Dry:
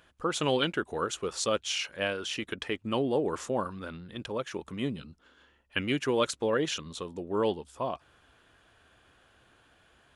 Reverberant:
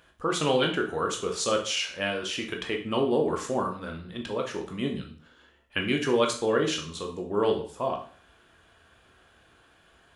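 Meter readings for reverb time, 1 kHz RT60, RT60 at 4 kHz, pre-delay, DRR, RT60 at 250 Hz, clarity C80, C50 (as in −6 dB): 0.45 s, 0.45 s, 0.40 s, 7 ms, 2.0 dB, 0.45 s, 13.5 dB, 8.5 dB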